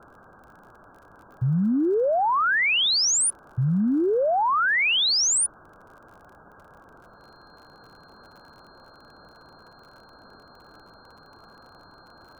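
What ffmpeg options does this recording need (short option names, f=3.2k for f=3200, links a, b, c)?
-af "adeclick=t=4,bandreject=f=4.2k:w=30,afwtdn=0.01"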